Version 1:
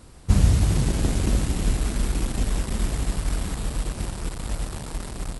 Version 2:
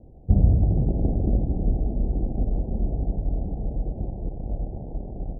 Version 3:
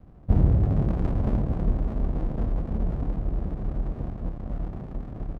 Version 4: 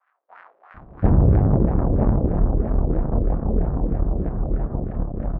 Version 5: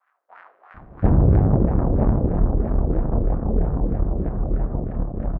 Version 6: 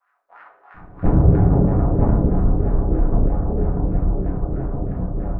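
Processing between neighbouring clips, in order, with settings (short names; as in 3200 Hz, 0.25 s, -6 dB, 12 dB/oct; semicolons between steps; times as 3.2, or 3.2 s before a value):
steep low-pass 780 Hz 72 dB/oct
low shelf 140 Hz -6 dB; doubler 28 ms -8 dB; running maximum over 65 samples; gain +3 dB
LFO low-pass sine 3.1 Hz 420–1700 Hz; bands offset in time highs, lows 0.74 s, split 1300 Hz; tube stage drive 16 dB, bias 0.6; gain +8.5 dB
feedback echo 76 ms, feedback 54%, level -16 dB
shoebox room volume 49 m³, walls mixed, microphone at 0.73 m; gain -3 dB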